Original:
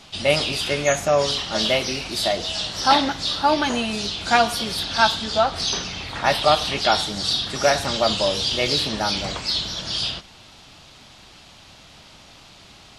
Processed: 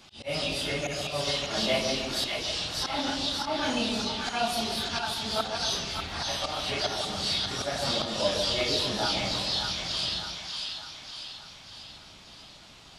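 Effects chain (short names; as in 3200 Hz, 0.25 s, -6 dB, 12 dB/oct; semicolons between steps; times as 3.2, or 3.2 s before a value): phase scrambler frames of 0.1 s; auto swell 0.214 s; split-band echo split 850 Hz, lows 0.145 s, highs 0.593 s, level -4 dB; gain -6.5 dB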